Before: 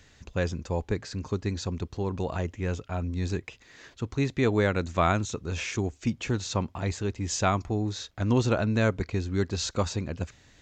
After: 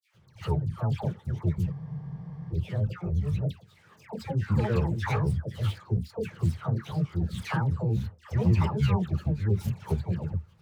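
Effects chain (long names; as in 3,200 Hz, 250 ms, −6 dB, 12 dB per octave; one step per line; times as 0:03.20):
running median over 9 samples
granular cloud, spray 10 ms, pitch spread up and down by 12 semitones
in parallel at −10 dB: wave folding −22.5 dBFS
on the sum: all-pass dispersion lows, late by 133 ms, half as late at 1,200 Hz
on a send at −11.5 dB: convolution reverb RT60 0.10 s, pre-delay 3 ms
on the sum: frozen spectrum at 0:01.75, 0.77 s
level −7.5 dB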